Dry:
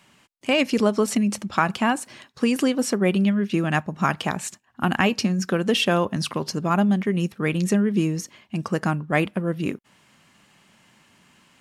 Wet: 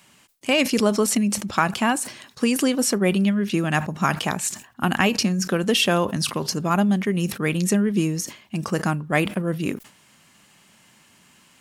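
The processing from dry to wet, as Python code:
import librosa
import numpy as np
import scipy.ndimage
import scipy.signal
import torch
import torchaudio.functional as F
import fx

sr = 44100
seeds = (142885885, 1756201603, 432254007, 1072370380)

y = fx.high_shelf(x, sr, hz=5700.0, db=10.0)
y = fx.sustainer(y, sr, db_per_s=140.0)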